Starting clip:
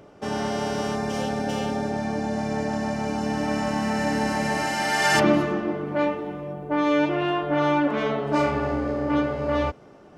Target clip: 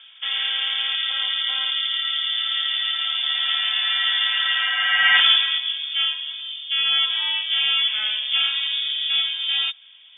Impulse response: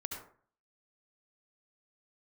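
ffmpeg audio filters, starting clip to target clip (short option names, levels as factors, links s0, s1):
-af "highshelf=f=2700:g=-9.5,lowpass=f=3100:t=q:w=0.5098,lowpass=f=3100:t=q:w=0.6013,lowpass=f=3100:t=q:w=0.9,lowpass=f=3100:t=q:w=2.563,afreqshift=-3700,asetnsamples=n=441:p=0,asendcmd='5.58 equalizer g 5.5',equalizer=f=1500:w=1.3:g=13.5"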